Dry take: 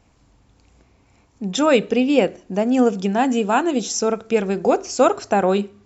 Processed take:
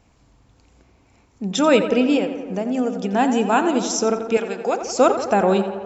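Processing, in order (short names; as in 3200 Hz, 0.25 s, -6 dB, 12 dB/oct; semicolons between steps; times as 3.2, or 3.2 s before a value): 2.17–3.14 compressor 2:1, threshold -25 dBFS, peak gain reduction 8.5 dB; 4.37–4.82 HPF 860 Hz 6 dB/oct; tape echo 86 ms, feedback 78%, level -9 dB, low-pass 2900 Hz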